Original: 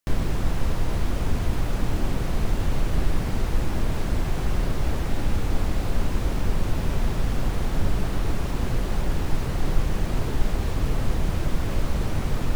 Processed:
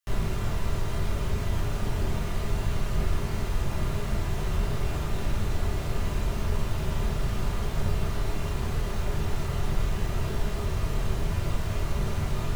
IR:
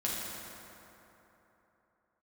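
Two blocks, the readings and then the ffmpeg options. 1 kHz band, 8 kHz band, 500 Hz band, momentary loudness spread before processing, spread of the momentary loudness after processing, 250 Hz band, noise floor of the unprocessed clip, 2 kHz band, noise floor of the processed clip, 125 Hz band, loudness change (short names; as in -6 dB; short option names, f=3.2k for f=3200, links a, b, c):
-2.5 dB, -1.5 dB, -2.5 dB, 1 LU, 1 LU, -5.0 dB, -27 dBFS, -2.5 dB, -31 dBFS, -2.0 dB, -3.0 dB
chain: -filter_complex "[0:a]acrossover=split=170|710[a][b][c];[b]acrusher=bits=5:dc=4:mix=0:aa=0.000001[d];[a][d][c]amix=inputs=3:normalize=0[e];[1:a]atrim=start_sample=2205,afade=t=out:st=0.18:d=0.01,atrim=end_sample=8379,asetrate=83790,aresample=44100[f];[e][f]afir=irnorm=-1:irlink=0"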